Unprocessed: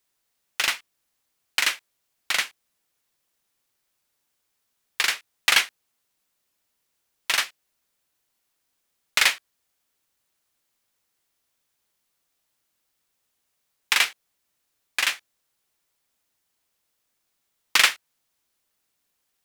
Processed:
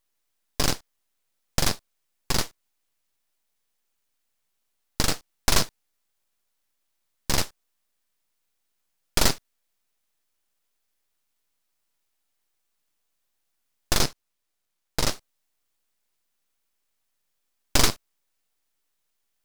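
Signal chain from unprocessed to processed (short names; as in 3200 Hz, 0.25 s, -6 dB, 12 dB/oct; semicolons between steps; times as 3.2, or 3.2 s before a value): rattling part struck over -57 dBFS, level -9 dBFS; 14–15.12 high shelf 10000 Hz -8 dB; full-wave rectifier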